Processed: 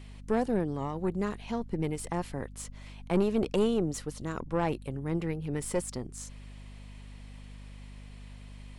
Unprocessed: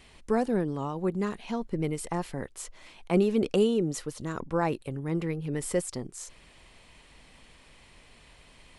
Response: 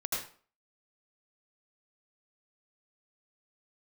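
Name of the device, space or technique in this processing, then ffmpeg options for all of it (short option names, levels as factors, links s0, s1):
valve amplifier with mains hum: -af "aeval=exprs='(tanh(8.91*val(0)+0.5)-tanh(0.5))/8.91':c=same,aeval=exprs='val(0)+0.00562*(sin(2*PI*50*n/s)+sin(2*PI*2*50*n/s)/2+sin(2*PI*3*50*n/s)/3+sin(2*PI*4*50*n/s)/4+sin(2*PI*5*50*n/s)/5)':c=same"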